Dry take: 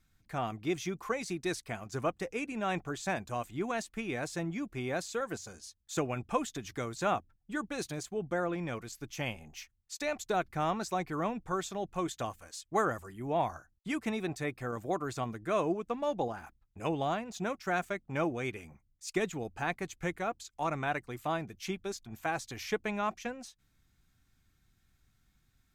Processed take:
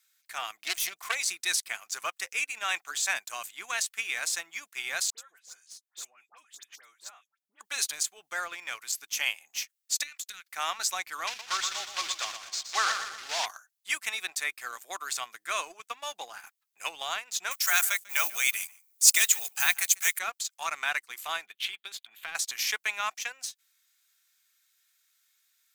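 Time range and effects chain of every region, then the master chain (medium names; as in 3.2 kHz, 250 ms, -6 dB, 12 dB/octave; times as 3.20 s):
0.61–1.15 s: self-modulated delay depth 0.21 ms + peaking EQ 660 Hz +13 dB 0.31 oct
5.10–7.61 s: treble shelf 2.1 kHz -11.5 dB + compression 4:1, threshold -48 dBFS + phase dispersion highs, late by 82 ms, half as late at 1.7 kHz
10.03–10.47 s: high-pass 1.5 kHz 24 dB/octave + compression 10:1, threshold -47 dBFS
11.27–13.46 s: block-companded coder 3-bit + low-pass 6.1 kHz 24 dB/octave + two-band feedback delay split 360 Hz, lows 257 ms, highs 119 ms, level -7.5 dB
17.51–20.19 s: block-companded coder 7-bit + RIAA curve recording + delay 145 ms -19.5 dB
21.46–22.35 s: resonant high shelf 4.4 kHz -8 dB, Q 3 + compression, threshold -37 dBFS
whole clip: high-pass 1.4 kHz 12 dB/octave; tilt EQ +3 dB/octave; waveshaping leveller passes 1; trim +3.5 dB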